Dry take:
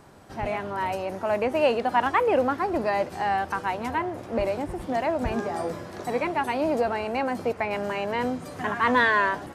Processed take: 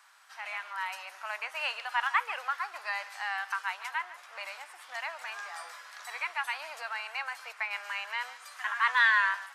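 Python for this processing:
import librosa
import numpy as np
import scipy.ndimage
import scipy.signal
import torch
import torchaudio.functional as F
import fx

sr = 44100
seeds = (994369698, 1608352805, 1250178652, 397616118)

y = scipy.signal.sosfilt(scipy.signal.butter(4, 1200.0, 'highpass', fs=sr, output='sos'), x)
y = fx.high_shelf(y, sr, hz=9000.0, db=-4.0)
y = y + 10.0 ** (-16.5 / 20.0) * np.pad(y, (int(146 * sr / 1000.0), 0))[:len(y)]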